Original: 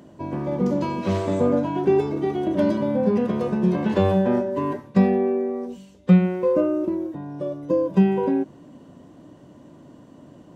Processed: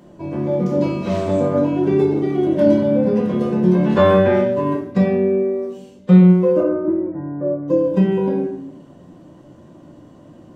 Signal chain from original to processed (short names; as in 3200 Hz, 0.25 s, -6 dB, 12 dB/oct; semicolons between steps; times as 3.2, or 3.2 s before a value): 3.96–4.53 bell 1200 Hz -> 3500 Hz +13.5 dB 1.3 oct; 6.6–7.68 steep low-pass 2100 Hz 48 dB/oct; shoebox room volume 110 m³, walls mixed, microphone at 0.86 m; gain -1 dB